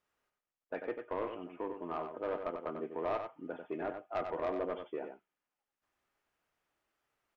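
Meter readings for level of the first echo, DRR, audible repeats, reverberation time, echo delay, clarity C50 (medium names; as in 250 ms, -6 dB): -7.0 dB, no reverb, 1, no reverb, 94 ms, no reverb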